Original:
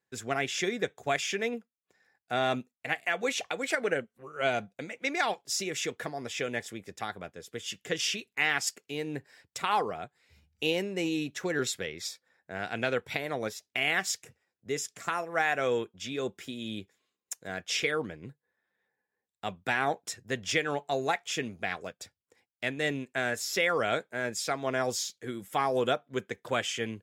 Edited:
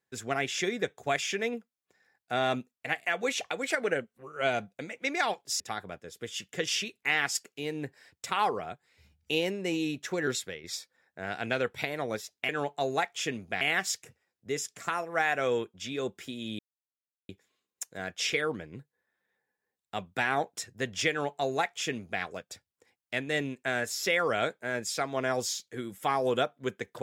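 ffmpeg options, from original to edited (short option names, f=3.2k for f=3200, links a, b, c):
-filter_complex "[0:a]asplit=6[a][b][c][d][e][f];[a]atrim=end=5.602[g];[b]atrim=start=6.918:end=11.96,asetpts=PTS-STARTPTS,afade=t=out:st=4.712:d=0.33:silence=0.398107[h];[c]atrim=start=11.96:end=13.812,asetpts=PTS-STARTPTS,afade=t=in:d=0.004:c=hsin:silence=0.398107[i];[d]atrim=start=20.598:end=21.722[j];[e]atrim=start=13.808:end=16.79,asetpts=PTS-STARTPTS,afade=t=out:st=2.978:d=0.004:c=hsin,apad=pad_dur=0.7[k];[f]atrim=start=16.79,asetpts=PTS-STARTPTS,afade=t=in:d=0.004:c=hsin[l];[h][i]concat=n=2:v=0:a=1[m];[g][m]acrossfade=d=0.004:c1=hsin:c2=hsin[n];[n][j]acrossfade=d=0.004:c1=hsin:c2=hsin[o];[k][l]concat=n=2:v=0:a=1[p];[o][p]acrossfade=d=0.004:c1=hsin:c2=hsin"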